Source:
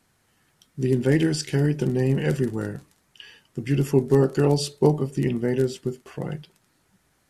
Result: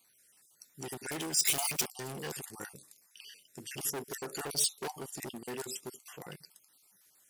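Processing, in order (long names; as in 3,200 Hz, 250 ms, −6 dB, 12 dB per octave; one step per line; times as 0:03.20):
time-frequency cells dropped at random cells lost 39%
high-shelf EQ 2,700 Hz +4.5 dB
hard clipping −23 dBFS, distortion −6 dB
0:01.45–0:01.86: leveller curve on the samples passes 5
RIAA equalisation recording
level −8.5 dB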